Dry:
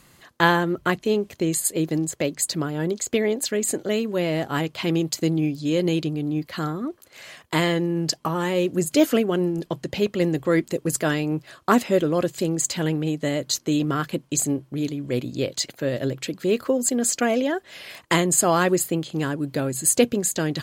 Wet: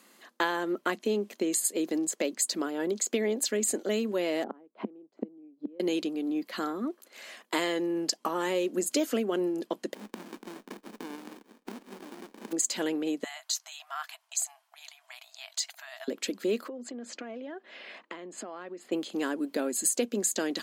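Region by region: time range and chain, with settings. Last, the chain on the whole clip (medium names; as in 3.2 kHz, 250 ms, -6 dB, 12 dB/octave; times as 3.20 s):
4.44–5.80 s: low-pass 1.1 kHz + peaking EQ 320 Hz +6.5 dB 2.4 oct + inverted gate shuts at -15 dBFS, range -30 dB
9.93–12.51 s: spectral contrast reduction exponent 0.18 + compression 8:1, threshold -32 dBFS + sliding maximum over 65 samples
13.24–16.08 s: compression 2:1, threshold -27 dBFS + brick-wall FIR high-pass 630 Hz
16.68–18.92 s: low-pass 2.9 kHz + compression 12:1, threshold -33 dBFS
whole clip: elliptic high-pass 210 Hz, stop band 40 dB; dynamic bell 6.6 kHz, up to +4 dB, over -40 dBFS, Q 0.9; compression 6:1, threshold -21 dBFS; trim -3 dB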